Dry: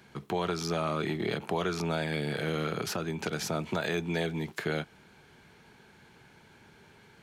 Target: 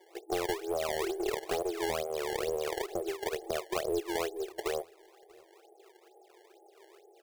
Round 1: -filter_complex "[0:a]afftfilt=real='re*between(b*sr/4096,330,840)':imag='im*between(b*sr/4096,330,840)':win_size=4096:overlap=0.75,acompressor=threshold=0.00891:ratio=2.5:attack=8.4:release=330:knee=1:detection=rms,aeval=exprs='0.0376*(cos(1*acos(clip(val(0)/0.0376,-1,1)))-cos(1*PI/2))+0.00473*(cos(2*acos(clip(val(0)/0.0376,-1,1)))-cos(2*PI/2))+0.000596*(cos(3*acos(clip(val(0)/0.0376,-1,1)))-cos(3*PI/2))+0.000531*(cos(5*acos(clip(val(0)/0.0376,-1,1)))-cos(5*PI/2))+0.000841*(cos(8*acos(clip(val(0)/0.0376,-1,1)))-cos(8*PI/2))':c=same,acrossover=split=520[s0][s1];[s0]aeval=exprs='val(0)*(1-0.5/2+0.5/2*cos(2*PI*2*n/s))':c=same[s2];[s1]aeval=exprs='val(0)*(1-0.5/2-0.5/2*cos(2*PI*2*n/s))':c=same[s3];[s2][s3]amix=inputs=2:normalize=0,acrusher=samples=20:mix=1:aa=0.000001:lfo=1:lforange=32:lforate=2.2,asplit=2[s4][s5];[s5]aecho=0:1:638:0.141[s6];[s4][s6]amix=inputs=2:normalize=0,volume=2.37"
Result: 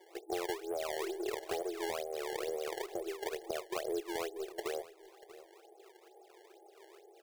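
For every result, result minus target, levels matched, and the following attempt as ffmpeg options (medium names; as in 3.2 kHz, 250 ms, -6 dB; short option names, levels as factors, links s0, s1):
echo-to-direct +9.5 dB; compression: peak gain reduction +5 dB
-filter_complex "[0:a]afftfilt=real='re*between(b*sr/4096,330,840)':imag='im*between(b*sr/4096,330,840)':win_size=4096:overlap=0.75,acompressor=threshold=0.00891:ratio=2.5:attack=8.4:release=330:knee=1:detection=rms,aeval=exprs='0.0376*(cos(1*acos(clip(val(0)/0.0376,-1,1)))-cos(1*PI/2))+0.00473*(cos(2*acos(clip(val(0)/0.0376,-1,1)))-cos(2*PI/2))+0.000596*(cos(3*acos(clip(val(0)/0.0376,-1,1)))-cos(3*PI/2))+0.000531*(cos(5*acos(clip(val(0)/0.0376,-1,1)))-cos(5*PI/2))+0.000841*(cos(8*acos(clip(val(0)/0.0376,-1,1)))-cos(8*PI/2))':c=same,acrossover=split=520[s0][s1];[s0]aeval=exprs='val(0)*(1-0.5/2+0.5/2*cos(2*PI*2*n/s))':c=same[s2];[s1]aeval=exprs='val(0)*(1-0.5/2-0.5/2*cos(2*PI*2*n/s))':c=same[s3];[s2][s3]amix=inputs=2:normalize=0,acrusher=samples=20:mix=1:aa=0.000001:lfo=1:lforange=32:lforate=2.2,asplit=2[s4][s5];[s5]aecho=0:1:638:0.0473[s6];[s4][s6]amix=inputs=2:normalize=0,volume=2.37"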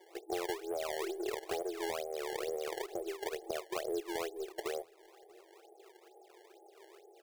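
compression: peak gain reduction +5 dB
-filter_complex "[0:a]afftfilt=real='re*between(b*sr/4096,330,840)':imag='im*between(b*sr/4096,330,840)':win_size=4096:overlap=0.75,acompressor=threshold=0.0224:ratio=2.5:attack=8.4:release=330:knee=1:detection=rms,aeval=exprs='0.0376*(cos(1*acos(clip(val(0)/0.0376,-1,1)))-cos(1*PI/2))+0.00473*(cos(2*acos(clip(val(0)/0.0376,-1,1)))-cos(2*PI/2))+0.000596*(cos(3*acos(clip(val(0)/0.0376,-1,1)))-cos(3*PI/2))+0.000531*(cos(5*acos(clip(val(0)/0.0376,-1,1)))-cos(5*PI/2))+0.000841*(cos(8*acos(clip(val(0)/0.0376,-1,1)))-cos(8*PI/2))':c=same,acrossover=split=520[s0][s1];[s0]aeval=exprs='val(0)*(1-0.5/2+0.5/2*cos(2*PI*2*n/s))':c=same[s2];[s1]aeval=exprs='val(0)*(1-0.5/2-0.5/2*cos(2*PI*2*n/s))':c=same[s3];[s2][s3]amix=inputs=2:normalize=0,acrusher=samples=20:mix=1:aa=0.000001:lfo=1:lforange=32:lforate=2.2,asplit=2[s4][s5];[s5]aecho=0:1:638:0.0473[s6];[s4][s6]amix=inputs=2:normalize=0,volume=2.37"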